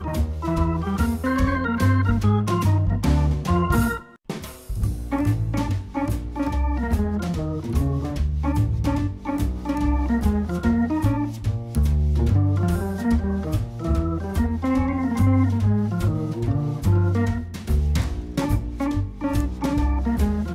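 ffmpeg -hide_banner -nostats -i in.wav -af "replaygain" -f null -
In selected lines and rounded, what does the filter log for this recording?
track_gain = +6.4 dB
track_peak = 0.259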